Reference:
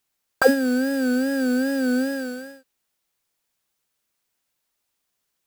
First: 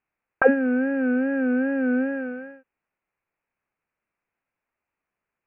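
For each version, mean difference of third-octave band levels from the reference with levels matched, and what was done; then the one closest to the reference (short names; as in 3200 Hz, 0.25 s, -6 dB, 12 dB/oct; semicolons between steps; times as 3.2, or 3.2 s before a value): 7.0 dB: elliptic low-pass 2500 Hz, stop band 40 dB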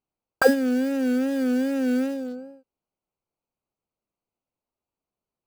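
3.5 dB: Wiener smoothing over 25 samples; gain -1 dB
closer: second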